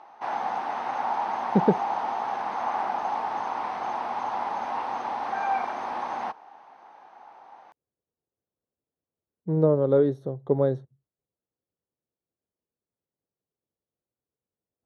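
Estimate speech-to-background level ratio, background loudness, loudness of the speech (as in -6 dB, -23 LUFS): 5.0 dB, -29.5 LUFS, -24.5 LUFS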